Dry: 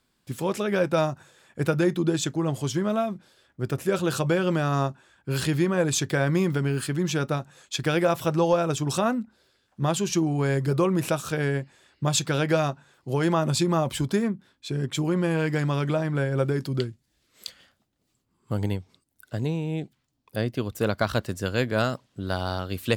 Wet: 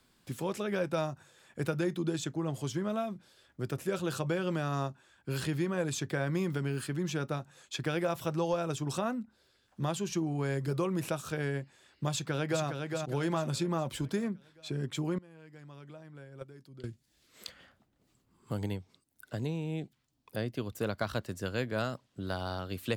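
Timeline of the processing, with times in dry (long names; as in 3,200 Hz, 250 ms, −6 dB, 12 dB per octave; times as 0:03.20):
0:12.10–0:12.64: delay throw 410 ms, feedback 45%, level −6 dB
0:15.18–0:16.84: noise gate −19 dBFS, range −24 dB
whole clip: multiband upward and downward compressor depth 40%; level −8.5 dB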